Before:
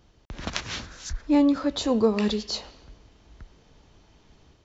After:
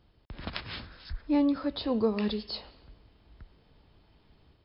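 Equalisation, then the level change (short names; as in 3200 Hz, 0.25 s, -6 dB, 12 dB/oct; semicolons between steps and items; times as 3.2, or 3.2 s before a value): brick-wall FIR low-pass 5300 Hz; bell 91 Hz +2.5 dB 1.9 oct; -6.0 dB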